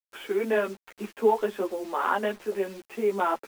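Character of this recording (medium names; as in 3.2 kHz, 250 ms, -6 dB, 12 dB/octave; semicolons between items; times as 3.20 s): a quantiser's noise floor 8-bit, dither none; a shimmering, thickened sound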